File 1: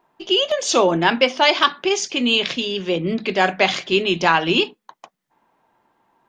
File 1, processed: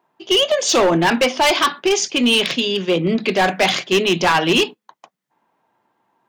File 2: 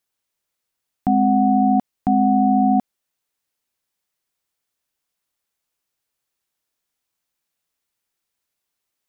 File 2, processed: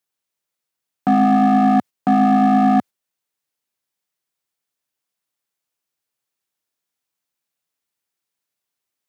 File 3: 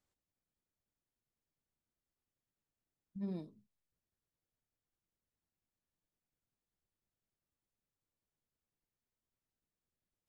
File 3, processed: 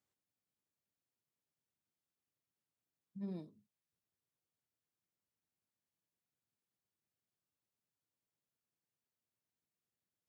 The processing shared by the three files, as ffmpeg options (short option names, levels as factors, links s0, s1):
-filter_complex "[0:a]agate=range=0.447:threshold=0.0355:ratio=16:detection=peak,highpass=f=90:w=0.5412,highpass=f=90:w=1.3066,asplit=2[s0][s1];[s1]acontrast=34,volume=1.33[s2];[s0][s2]amix=inputs=2:normalize=0,asoftclip=type=hard:threshold=0.631,volume=0.473"